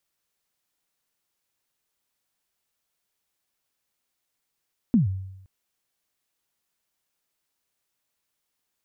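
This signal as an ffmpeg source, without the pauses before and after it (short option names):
-f lavfi -i "aevalsrc='0.224*pow(10,-3*t/0.87)*sin(2*PI*(260*0.133/log(95/260)*(exp(log(95/260)*min(t,0.133)/0.133)-1)+95*max(t-0.133,0)))':d=0.52:s=44100"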